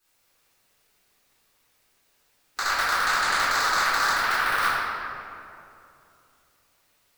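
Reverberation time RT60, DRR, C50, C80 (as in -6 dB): 2.7 s, -14.0 dB, -3.5 dB, -1.0 dB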